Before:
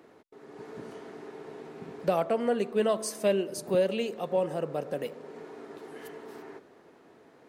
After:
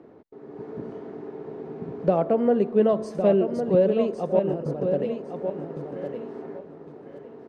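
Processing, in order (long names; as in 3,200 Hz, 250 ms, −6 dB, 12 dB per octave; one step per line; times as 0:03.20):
low-pass filter 5,400 Hz 12 dB per octave
tilt shelving filter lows +9.5 dB, about 1,100 Hz
0:04.39–0:04.85: compressor whose output falls as the input rises −31 dBFS, ratio −1
on a send: repeating echo 1,107 ms, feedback 23%, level −7.5 dB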